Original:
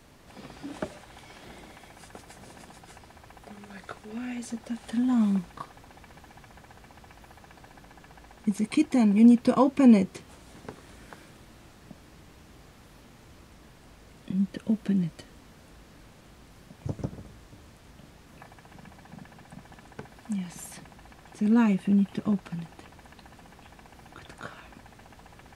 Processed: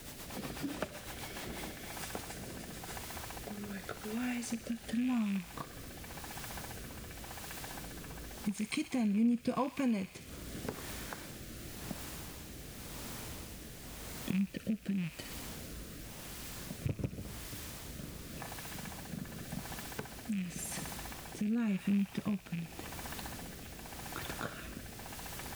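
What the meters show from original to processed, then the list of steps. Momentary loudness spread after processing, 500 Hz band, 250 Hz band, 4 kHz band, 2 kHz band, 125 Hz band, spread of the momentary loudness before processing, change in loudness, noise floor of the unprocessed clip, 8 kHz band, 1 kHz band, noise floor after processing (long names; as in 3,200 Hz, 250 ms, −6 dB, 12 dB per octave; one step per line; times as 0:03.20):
12 LU, −9.5 dB, −10.5 dB, +2.5 dB, −0.5 dB, −6.0 dB, 24 LU, −14.0 dB, −54 dBFS, can't be measured, −6.5 dB, −50 dBFS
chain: loose part that buzzes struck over −32 dBFS, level −29 dBFS
background noise white −54 dBFS
dynamic equaliser 340 Hz, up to −6 dB, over −38 dBFS, Q 1.1
on a send: delay with a high-pass on its return 62 ms, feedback 63%, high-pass 1,600 Hz, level −10 dB
on the sum: downward compressor 2.5 to 1, threshold −42 dBFS, peak gain reduction 17 dB
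rotating-speaker cabinet horn 8 Hz, later 0.9 Hz, at 0:01.04
level +6.5 dB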